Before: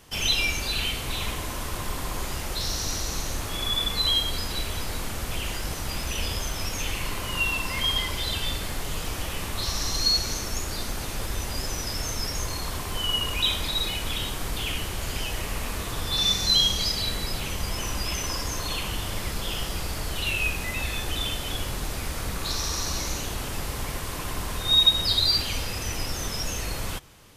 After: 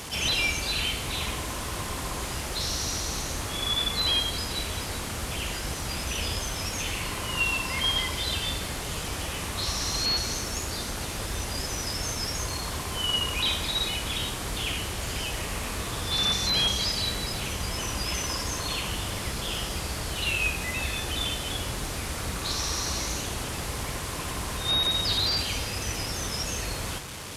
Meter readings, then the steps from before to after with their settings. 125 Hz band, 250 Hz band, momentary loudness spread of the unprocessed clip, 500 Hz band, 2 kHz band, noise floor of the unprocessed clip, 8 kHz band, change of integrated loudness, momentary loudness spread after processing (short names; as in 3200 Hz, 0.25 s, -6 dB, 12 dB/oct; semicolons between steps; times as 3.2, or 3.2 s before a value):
-0.5 dB, 0.0 dB, 10 LU, +0.5 dB, +0.5 dB, -33 dBFS, +0.5 dB, -1.5 dB, 8 LU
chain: delta modulation 64 kbps, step -32 dBFS; HPF 46 Hz